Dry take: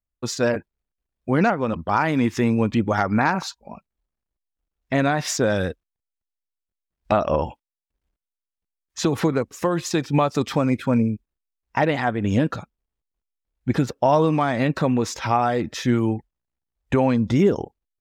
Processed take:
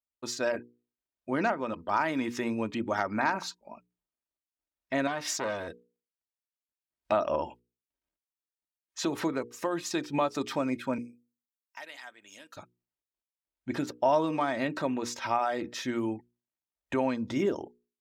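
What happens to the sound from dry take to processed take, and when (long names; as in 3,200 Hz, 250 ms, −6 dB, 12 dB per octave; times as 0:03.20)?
0:05.07–0:05.68: saturating transformer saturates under 1,100 Hz
0:10.98–0:12.57: first difference
whole clip: high-pass filter 300 Hz 6 dB per octave; mains-hum notches 60/120/180/240/300/360/420/480 Hz; comb filter 3.2 ms, depth 35%; level −7 dB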